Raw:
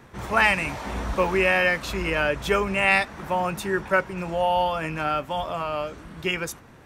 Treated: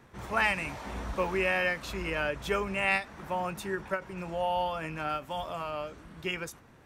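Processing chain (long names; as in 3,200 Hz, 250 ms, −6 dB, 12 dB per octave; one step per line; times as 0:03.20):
0:05.09–0:05.71: high-shelf EQ 5,300 Hz +5.5 dB
every ending faded ahead of time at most 220 dB per second
level −7.5 dB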